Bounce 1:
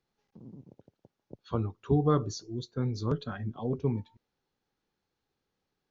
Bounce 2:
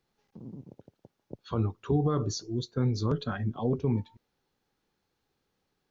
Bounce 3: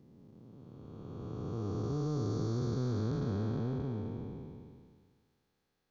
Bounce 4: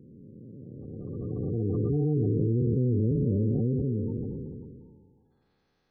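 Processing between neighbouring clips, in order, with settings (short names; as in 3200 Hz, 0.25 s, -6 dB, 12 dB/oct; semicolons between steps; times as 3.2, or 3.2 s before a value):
limiter -22 dBFS, peak gain reduction 9.5 dB; gain +4.5 dB
time blur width 1.11 s
spectral gate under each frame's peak -20 dB strong; gain +8.5 dB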